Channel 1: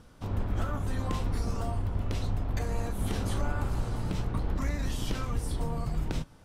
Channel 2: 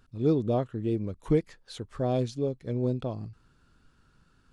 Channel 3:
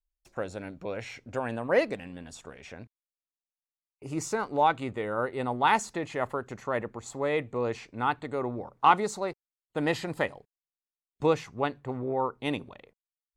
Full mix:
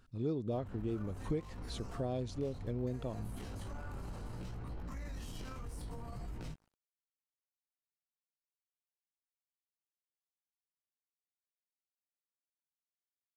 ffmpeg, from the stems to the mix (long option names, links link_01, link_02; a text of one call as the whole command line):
ffmpeg -i stem1.wav -i stem2.wav -filter_complex "[0:a]flanger=delay=15.5:depth=7.7:speed=0.68,aeval=exprs='sgn(val(0))*max(abs(val(0))-0.00224,0)':channel_layout=same,bandreject=frequency=3500:width=13,adelay=300,volume=-5dB[link_01];[1:a]volume=-3dB[link_02];[link_01]alimiter=level_in=12.5dB:limit=-24dB:level=0:latency=1:release=20,volume=-12.5dB,volume=0dB[link_03];[link_02][link_03]amix=inputs=2:normalize=0,acompressor=threshold=-36dB:ratio=2.5" out.wav